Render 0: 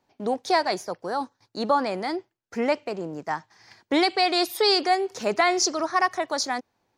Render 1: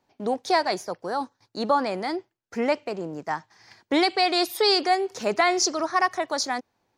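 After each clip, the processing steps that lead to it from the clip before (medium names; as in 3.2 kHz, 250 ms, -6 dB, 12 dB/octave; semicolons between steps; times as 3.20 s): no audible change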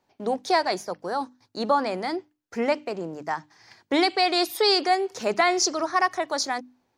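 hum notches 50/100/150/200/250/300 Hz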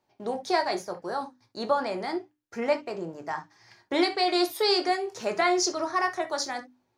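reverberation, pre-delay 4 ms, DRR 4.5 dB; trim -4.5 dB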